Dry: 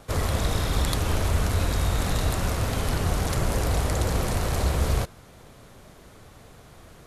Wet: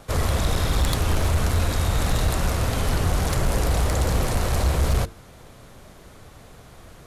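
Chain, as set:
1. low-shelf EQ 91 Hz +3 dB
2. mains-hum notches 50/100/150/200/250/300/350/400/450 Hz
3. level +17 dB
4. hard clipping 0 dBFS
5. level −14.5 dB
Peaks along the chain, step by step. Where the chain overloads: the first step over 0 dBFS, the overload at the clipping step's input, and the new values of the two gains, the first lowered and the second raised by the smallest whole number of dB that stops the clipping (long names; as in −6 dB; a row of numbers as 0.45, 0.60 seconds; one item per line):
−9.5, −10.0, +7.0, 0.0, −14.5 dBFS
step 3, 7.0 dB
step 3 +10 dB, step 5 −7.5 dB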